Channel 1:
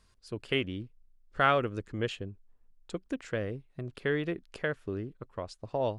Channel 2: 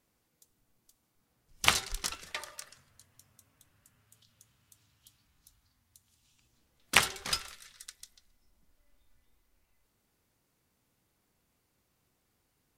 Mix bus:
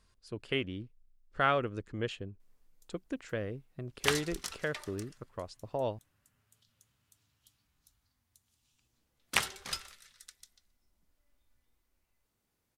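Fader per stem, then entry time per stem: −3.0, −5.5 decibels; 0.00, 2.40 seconds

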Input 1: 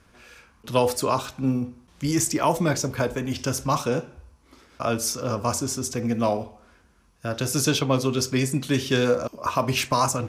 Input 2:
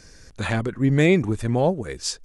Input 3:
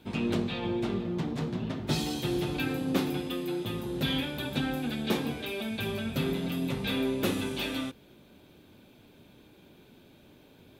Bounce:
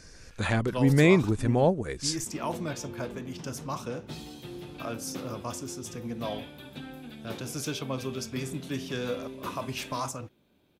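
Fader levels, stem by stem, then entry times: −11.5, −2.5, −11.5 decibels; 0.00, 0.00, 2.20 seconds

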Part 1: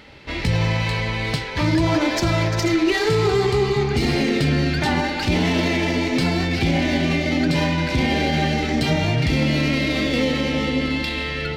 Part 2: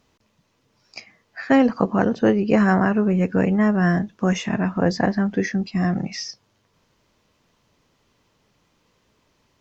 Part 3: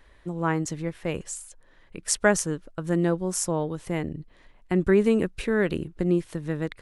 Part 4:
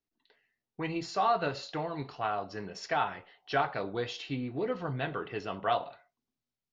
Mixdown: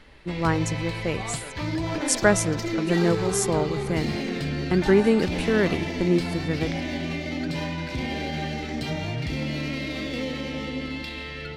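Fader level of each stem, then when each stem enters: −9.5, −19.5, +1.5, −11.5 decibels; 0.00, 0.50, 0.00, 0.00 seconds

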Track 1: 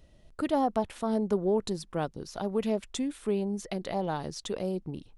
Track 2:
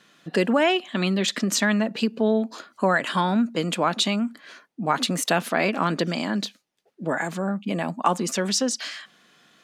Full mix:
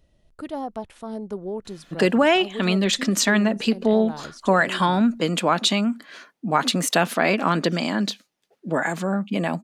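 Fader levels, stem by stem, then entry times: −4.0, +2.5 decibels; 0.00, 1.65 seconds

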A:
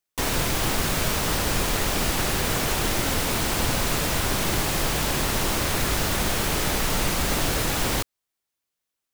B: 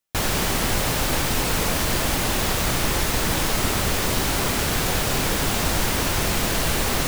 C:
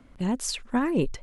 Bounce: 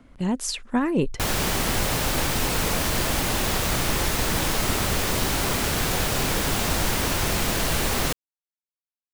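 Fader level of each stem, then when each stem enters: muted, −1.5 dB, +2.0 dB; muted, 1.05 s, 0.00 s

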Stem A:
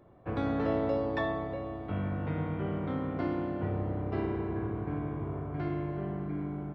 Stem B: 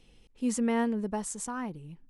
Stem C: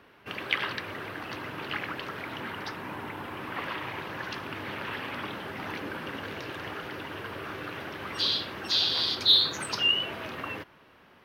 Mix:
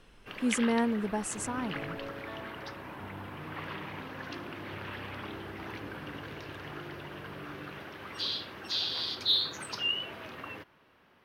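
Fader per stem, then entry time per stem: −13.0, 0.0, −6.5 decibels; 1.10, 0.00, 0.00 seconds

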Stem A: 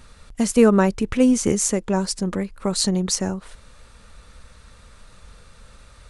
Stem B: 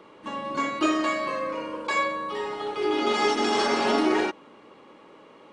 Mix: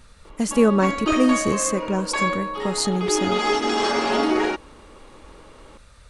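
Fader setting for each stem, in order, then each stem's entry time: −2.5, +2.0 decibels; 0.00, 0.25 seconds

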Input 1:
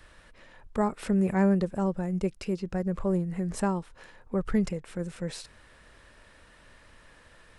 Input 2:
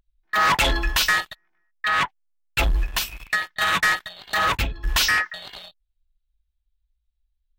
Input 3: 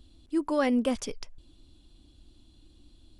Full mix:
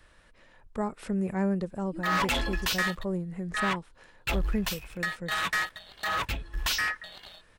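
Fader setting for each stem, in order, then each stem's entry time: −4.5, −8.5, −16.0 decibels; 0.00, 1.70, 1.60 seconds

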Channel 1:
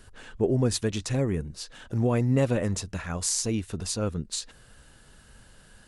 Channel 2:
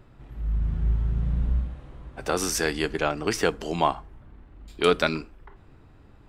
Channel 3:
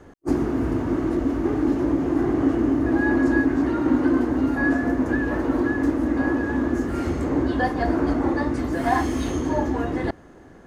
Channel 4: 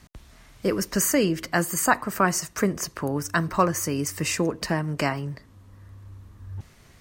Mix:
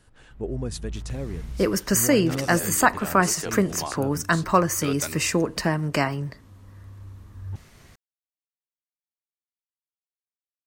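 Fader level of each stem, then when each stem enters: −7.0 dB, −11.0 dB, muted, +2.0 dB; 0.00 s, 0.00 s, muted, 0.95 s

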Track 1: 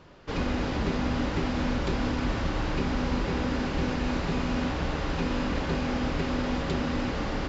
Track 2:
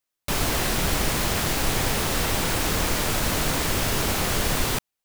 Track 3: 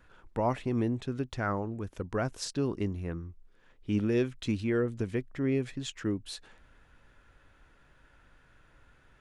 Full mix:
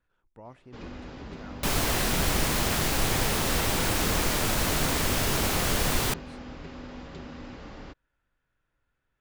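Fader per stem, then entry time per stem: −13.0, −2.0, −18.0 decibels; 0.45, 1.35, 0.00 seconds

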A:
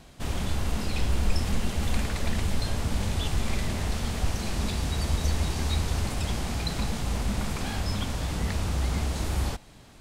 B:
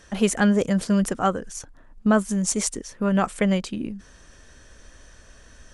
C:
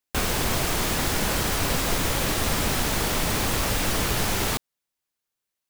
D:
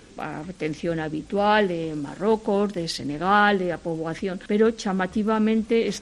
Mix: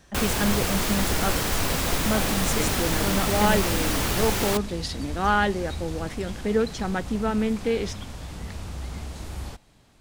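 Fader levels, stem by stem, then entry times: −7.0, −7.0, −1.0, −3.5 decibels; 0.00, 0.00, 0.00, 1.95 seconds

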